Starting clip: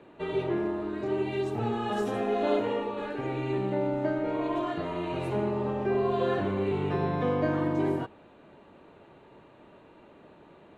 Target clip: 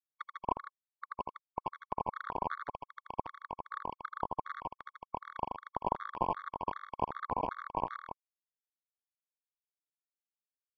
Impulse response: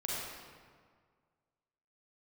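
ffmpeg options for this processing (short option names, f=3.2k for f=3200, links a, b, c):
-af "acompressor=threshold=-37dB:ratio=4,aresample=8000,acrusher=bits=4:mix=0:aa=0.000001,aresample=44100,asoftclip=type=hard:threshold=-36.5dB,lowpass=f=1k:t=q:w=4.9,aecho=1:1:81.63|154.5:0.501|0.501,afftfilt=real='re*gt(sin(2*PI*2.6*pts/sr)*(1-2*mod(floor(b*sr/1024/1100),2)),0)':imag='im*gt(sin(2*PI*2.6*pts/sr)*(1-2*mod(floor(b*sr/1024/1100),2)),0)':win_size=1024:overlap=0.75,volume=17dB"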